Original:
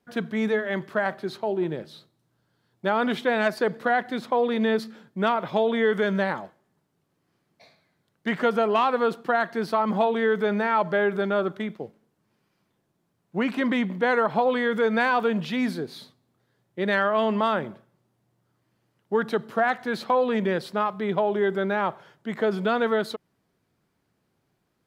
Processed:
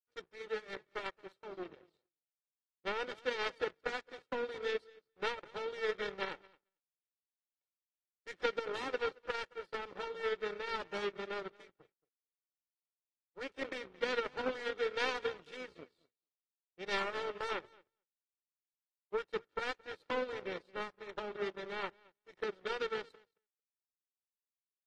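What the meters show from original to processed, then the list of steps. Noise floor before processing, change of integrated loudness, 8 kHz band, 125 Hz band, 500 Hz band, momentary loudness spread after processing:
−74 dBFS, −14.5 dB, can't be measured, −24.5 dB, −14.5 dB, 11 LU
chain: lower of the sound and its delayed copy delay 2.2 ms
loudspeaker in its box 120–5,500 Hz, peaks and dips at 310 Hz +6 dB, 550 Hz +3 dB, 880 Hz −7 dB
repeating echo 223 ms, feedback 20%, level −12.5 dB
power curve on the samples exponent 2
level −7 dB
AAC 32 kbit/s 48,000 Hz

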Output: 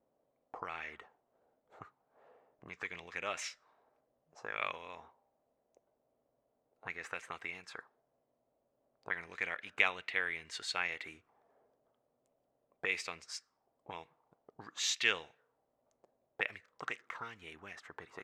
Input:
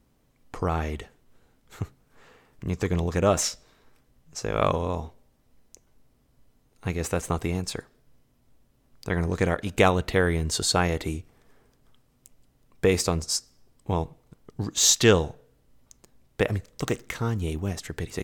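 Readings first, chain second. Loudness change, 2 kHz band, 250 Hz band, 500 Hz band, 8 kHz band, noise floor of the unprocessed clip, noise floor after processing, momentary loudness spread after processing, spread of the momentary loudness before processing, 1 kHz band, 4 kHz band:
−12.5 dB, −4.0 dB, −27.5 dB, −22.0 dB, −18.5 dB, −66 dBFS, −81 dBFS, 21 LU, 17 LU, −13.5 dB, −11.0 dB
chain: envelope filter 600–2,300 Hz, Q 3, up, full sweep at −22.5 dBFS

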